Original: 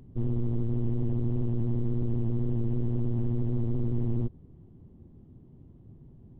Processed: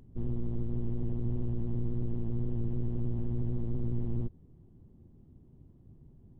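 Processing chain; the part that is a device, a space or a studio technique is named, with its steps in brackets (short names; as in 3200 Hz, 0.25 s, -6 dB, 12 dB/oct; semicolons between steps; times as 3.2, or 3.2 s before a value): octave pedal (harmoniser -12 st -6 dB); gain -5.5 dB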